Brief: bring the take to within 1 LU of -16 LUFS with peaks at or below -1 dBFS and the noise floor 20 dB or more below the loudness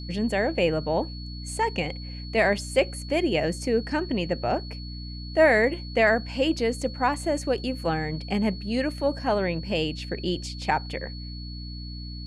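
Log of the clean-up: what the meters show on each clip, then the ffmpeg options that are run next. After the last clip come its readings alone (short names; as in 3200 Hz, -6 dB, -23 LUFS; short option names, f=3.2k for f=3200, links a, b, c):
hum 60 Hz; harmonics up to 300 Hz; hum level -34 dBFS; steady tone 4400 Hz; tone level -42 dBFS; loudness -26.0 LUFS; peak -8.5 dBFS; loudness target -16.0 LUFS
-> -af "bandreject=f=60:t=h:w=6,bandreject=f=120:t=h:w=6,bandreject=f=180:t=h:w=6,bandreject=f=240:t=h:w=6,bandreject=f=300:t=h:w=6"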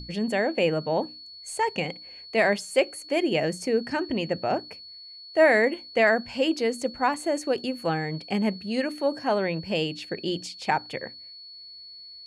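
hum none; steady tone 4400 Hz; tone level -42 dBFS
-> -af "bandreject=f=4.4k:w=30"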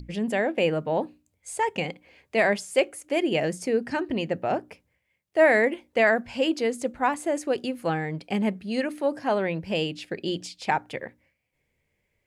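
steady tone none; loudness -26.0 LUFS; peak -9.5 dBFS; loudness target -16.0 LUFS
-> -af "volume=10dB,alimiter=limit=-1dB:level=0:latency=1"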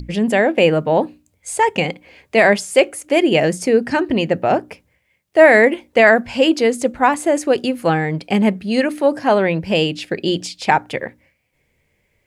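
loudness -16.5 LUFS; peak -1.0 dBFS; noise floor -66 dBFS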